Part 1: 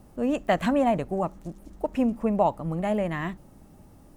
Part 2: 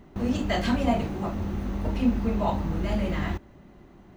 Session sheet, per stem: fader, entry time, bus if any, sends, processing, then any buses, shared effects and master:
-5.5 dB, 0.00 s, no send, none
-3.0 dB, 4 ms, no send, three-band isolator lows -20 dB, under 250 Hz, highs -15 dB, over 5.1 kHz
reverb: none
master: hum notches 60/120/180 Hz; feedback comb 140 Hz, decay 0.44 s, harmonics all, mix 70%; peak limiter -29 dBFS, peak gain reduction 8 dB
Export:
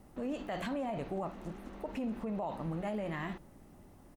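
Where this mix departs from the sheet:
stem 2 -3.0 dB -> -10.5 dB; master: missing feedback comb 140 Hz, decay 0.44 s, harmonics all, mix 70%

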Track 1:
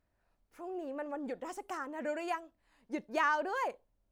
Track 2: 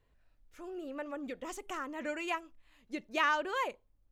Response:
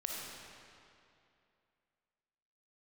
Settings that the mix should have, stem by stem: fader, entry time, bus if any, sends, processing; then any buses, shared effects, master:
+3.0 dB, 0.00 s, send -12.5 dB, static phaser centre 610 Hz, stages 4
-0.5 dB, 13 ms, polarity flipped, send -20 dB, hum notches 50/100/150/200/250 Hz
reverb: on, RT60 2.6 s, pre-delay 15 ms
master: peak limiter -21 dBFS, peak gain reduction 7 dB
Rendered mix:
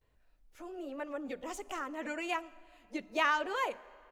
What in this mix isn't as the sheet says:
stem 1 +3.0 dB -> -8.0 dB; master: missing peak limiter -21 dBFS, peak gain reduction 7 dB

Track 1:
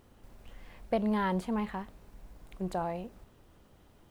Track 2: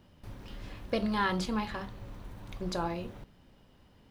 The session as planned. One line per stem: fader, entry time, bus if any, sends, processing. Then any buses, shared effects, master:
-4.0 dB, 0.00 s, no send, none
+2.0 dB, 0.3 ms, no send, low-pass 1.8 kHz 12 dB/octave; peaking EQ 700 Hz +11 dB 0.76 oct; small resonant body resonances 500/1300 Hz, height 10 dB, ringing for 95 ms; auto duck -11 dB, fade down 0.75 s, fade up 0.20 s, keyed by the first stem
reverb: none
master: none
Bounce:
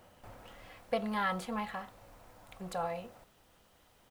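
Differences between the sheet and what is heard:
stem 2: polarity flipped; master: extra tilt shelf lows -7.5 dB, about 940 Hz

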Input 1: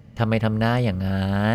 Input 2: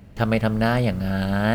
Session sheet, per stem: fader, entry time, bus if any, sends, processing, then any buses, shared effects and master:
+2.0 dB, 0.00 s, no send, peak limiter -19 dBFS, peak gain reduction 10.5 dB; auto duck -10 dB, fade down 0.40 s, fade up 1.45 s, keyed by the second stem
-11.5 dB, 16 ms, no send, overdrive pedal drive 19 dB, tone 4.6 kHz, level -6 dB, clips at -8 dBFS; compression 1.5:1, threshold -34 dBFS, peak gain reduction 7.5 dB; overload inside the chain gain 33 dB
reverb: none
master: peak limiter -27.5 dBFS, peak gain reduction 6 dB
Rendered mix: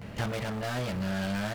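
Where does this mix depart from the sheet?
stem 2 -11.5 dB -> -1.0 dB; master: missing peak limiter -27.5 dBFS, peak gain reduction 6 dB

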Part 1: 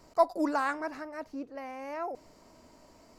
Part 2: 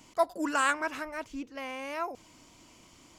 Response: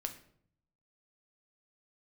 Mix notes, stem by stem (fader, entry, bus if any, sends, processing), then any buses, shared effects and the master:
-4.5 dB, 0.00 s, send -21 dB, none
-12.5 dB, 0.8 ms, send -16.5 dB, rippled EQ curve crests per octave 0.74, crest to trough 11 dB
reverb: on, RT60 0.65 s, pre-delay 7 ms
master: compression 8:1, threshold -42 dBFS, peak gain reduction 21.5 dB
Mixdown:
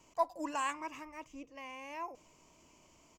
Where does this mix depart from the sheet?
stem 1 -4.5 dB -> -11.5 dB; master: missing compression 8:1, threshold -42 dBFS, peak gain reduction 21.5 dB

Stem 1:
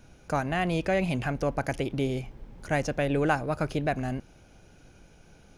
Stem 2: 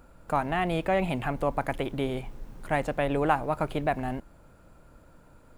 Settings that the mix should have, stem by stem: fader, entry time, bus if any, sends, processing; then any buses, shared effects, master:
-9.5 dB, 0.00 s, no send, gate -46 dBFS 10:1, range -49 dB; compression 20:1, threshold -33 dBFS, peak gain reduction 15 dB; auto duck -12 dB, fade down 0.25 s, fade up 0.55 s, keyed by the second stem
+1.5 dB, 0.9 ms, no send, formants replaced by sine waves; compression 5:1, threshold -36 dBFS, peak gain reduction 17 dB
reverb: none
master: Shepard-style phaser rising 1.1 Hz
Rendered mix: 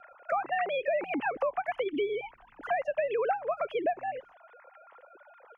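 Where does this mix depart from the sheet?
stem 2 +1.5 dB -> +8.0 dB; master: missing Shepard-style phaser rising 1.1 Hz

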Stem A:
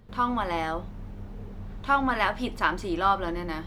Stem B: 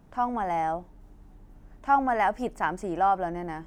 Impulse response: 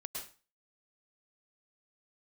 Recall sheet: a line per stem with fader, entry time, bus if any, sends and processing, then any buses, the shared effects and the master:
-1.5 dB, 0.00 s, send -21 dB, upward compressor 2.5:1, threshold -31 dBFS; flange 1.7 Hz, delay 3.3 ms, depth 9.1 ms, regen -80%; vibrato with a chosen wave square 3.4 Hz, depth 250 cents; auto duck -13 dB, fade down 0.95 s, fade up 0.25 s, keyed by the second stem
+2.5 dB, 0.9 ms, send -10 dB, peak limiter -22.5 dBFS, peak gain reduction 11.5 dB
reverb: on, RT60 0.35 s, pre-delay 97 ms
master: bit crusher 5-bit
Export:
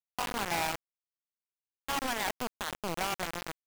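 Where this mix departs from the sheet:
stem A -1.5 dB -> -11.0 dB; stem B +2.5 dB -> -5.5 dB

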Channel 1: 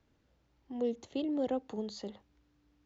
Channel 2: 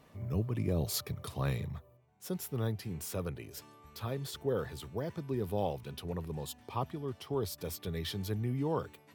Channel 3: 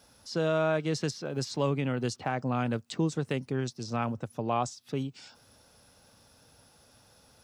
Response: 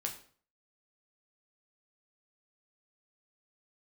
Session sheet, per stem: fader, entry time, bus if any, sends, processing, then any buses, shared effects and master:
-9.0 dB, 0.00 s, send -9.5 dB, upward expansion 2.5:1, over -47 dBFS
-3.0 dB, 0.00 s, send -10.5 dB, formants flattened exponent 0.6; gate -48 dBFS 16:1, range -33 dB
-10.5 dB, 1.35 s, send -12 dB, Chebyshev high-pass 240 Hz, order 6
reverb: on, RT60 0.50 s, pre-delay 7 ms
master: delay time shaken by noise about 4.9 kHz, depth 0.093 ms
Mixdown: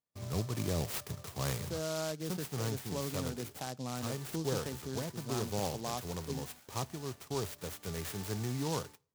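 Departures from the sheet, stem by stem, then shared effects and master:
stem 1: muted; stem 3: missing Chebyshev high-pass 240 Hz, order 6; reverb return -8.0 dB

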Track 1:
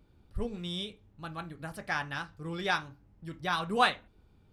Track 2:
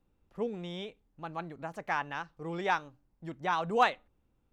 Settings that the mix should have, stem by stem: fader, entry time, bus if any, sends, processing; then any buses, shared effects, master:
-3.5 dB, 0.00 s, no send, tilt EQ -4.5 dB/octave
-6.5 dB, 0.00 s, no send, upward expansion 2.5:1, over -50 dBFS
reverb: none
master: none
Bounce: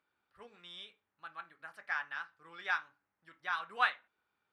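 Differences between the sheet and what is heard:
stem 2 -6.5 dB -> -14.0 dB; master: extra resonant high-pass 1.5 kHz, resonance Q 1.6

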